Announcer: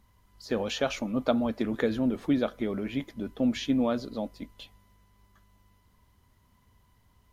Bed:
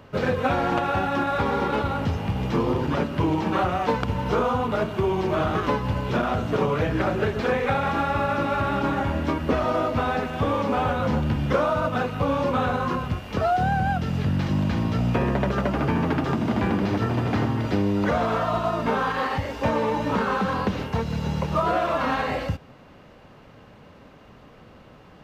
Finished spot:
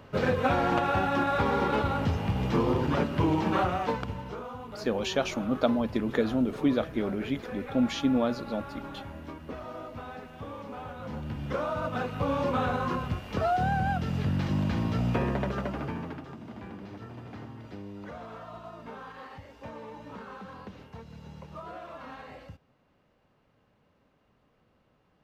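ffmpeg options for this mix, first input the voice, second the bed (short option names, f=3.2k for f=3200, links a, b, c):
-filter_complex "[0:a]adelay=4350,volume=0.5dB[a];[1:a]volume=10dB,afade=t=out:st=3.52:d=0.85:silence=0.188365,afade=t=in:st=10.95:d=1.46:silence=0.237137,afade=t=out:st=15.13:d=1.14:silence=0.177828[b];[a][b]amix=inputs=2:normalize=0"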